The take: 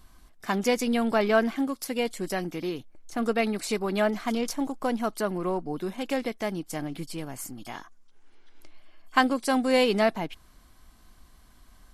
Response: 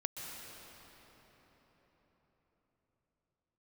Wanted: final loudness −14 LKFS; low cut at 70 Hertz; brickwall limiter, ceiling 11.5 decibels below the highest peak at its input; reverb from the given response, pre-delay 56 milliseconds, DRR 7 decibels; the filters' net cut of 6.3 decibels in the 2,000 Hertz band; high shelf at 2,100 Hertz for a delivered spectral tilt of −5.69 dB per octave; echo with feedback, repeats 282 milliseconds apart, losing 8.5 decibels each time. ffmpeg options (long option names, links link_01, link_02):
-filter_complex "[0:a]highpass=70,equalizer=frequency=2000:width_type=o:gain=-5,highshelf=frequency=2100:gain=-6,alimiter=limit=-21.5dB:level=0:latency=1,aecho=1:1:282|564|846|1128:0.376|0.143|0.0543|0.0206,asplit=2[link_01][link_02];[1:a]atrim=start_sample=2205,adelay=56[link_03];[link_02][link_03]afir=irnorm=-1:irlink=0,volume=-8dB[link_04];[link_01][link_04]amix=inputs=2:normalize=0,volume=16dB"